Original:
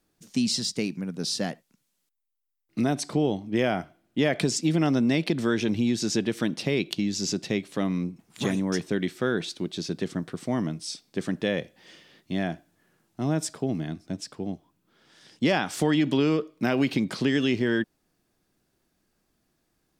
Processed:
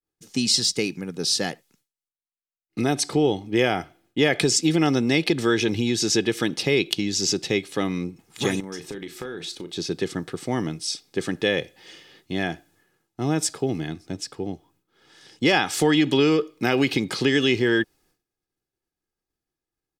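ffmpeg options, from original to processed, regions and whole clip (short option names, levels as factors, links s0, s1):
-filter_complex "[0:a]asettb=1/sr,asplit=3[s0][s1][s2];[s0]atrim=end=8.604[s3];[s1]atrim=start=8.6:end=9.76,asetpts=PTS-STARTPTS,afade=t=in:d=0.004:c=qsin,afade=t=out:st=1.156:d=0.004:c=qsin,highshelf=f=8700:g=4.5,acompressor=threshold=0.0224:ratio=8:attack=3.2:release=140:knee=1:detection=peak,asplit=2[s4][s5];[s5]adelay=36,volume=0.316[s6];[s4][s6]amix=inputs=2:normalize=0,atrim=end_sample=51156[s7];[s2]atrim=start=9.756[s8];[s3][s7]acrossfade=d=0.004:c1=hsin:c2=qsin[s9];[s9][s8]acrossfade=d=0.004:c1=qsin:c2=hsin,agate=range=0.0224:threshold=0.001:ratio=3:detection=peak,aecho=1:1:2.4:0.45,adynamicequalizer=threshold=0.0126:dfrequency=1600:dqfactor=0.7:tfrequency=1600:tqfactor=0.7:attack=5:release=100:ratio=0.375:range=2:mode=boostabove:tftype=highshelf,volume=1.41"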